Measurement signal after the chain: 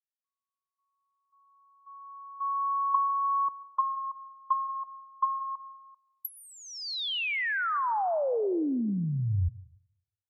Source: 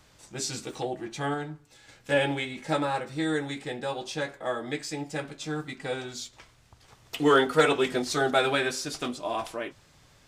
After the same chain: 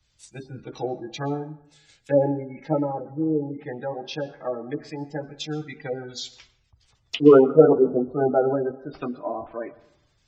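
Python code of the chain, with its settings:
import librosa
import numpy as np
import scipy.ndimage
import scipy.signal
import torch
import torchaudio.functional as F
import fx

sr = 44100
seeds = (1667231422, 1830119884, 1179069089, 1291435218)

y = fx.env_lowpass_down(x, sr, base_hz=680.0, full_db=-26.5)
y = fx.spec_gate(y, sr, threshold_db=-20, keep='strong')
y = fx.rev_plate(y, sr, seeds[0], rt60_s=1.0, hf_ratio=0.55, predelay_ms=110, drr_db=16.0)
y = fx.band_widen(y, sr, depth_pct=70)
y = y * librosa.db_to_amplitude(4.5)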